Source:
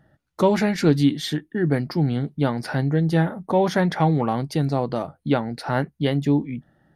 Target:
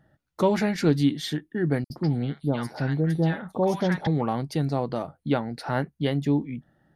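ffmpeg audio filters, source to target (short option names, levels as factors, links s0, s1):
-filter_complex "[0:a]asettb=1/sr,asplit=3[s0][s1][s2];[s0]atrim=end=1.844[s3];[s1]atrim=start=1.84:end=4.07,asetpts=PTS-STARTPTS,afade=t=in:d=0.004:c=qsin,afade=t=out:st=2.226:d=0.004:c=qsin,acrossover=split=980|5300[s4][s5][s6];[s4]adelay=60[s7];[s5]adelay=130[s8];[s7][s8][s6]amix=inputs=3:normalize=0,atrim=end_sample=98343[s9];[s2]atrim=start=4.066[s10];[s3][s9]acrossfade=d=0.004:c1=hsin:c2=qsin[s11];[s11][s10]acrossfade=d=0.004:c1=qsin:c2=hsin,volume=0.668"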